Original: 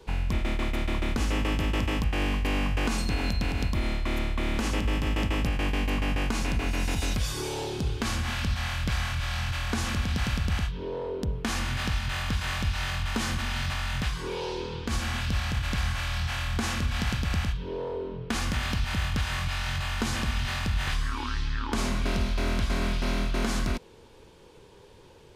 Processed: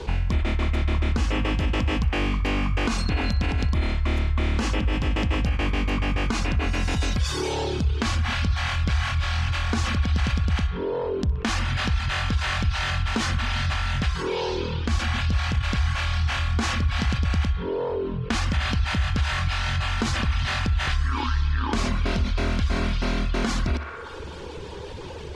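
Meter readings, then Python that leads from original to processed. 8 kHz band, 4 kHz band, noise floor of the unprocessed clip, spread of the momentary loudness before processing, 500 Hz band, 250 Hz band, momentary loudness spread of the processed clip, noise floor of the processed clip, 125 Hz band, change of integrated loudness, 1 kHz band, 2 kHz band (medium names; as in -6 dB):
+0.5 dB, +3.0 dB, -52 dBFS, 4 LU, +4.5 dB, +3.5 dB, 3 LU, -35 dBFS, +5.5 dB, +4.5 dB, +4.5 dB, +3.5 dB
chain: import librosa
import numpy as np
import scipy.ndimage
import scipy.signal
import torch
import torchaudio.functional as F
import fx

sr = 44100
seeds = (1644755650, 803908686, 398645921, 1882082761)

p1 = scipy.signal.sosfilt(scipy.signal.butter(2, 6600.0, 'lowpass', fs=sr, output='sos'), x)
p2 = fx.dereverb_blind(p1, sr, rt60_s=0.76)
p3 = fx.peak_eq(p2, sr, hz=72.0, db=11.5, octaves=0.3)
p4 = p3 + fx.echo_banded(p3, sr, ms=62, feedback_pct=80, hz=1300.0, wet_db=-12.0, dry=0)
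y = fx.env_flatten(p4, sr, amount_pct=50)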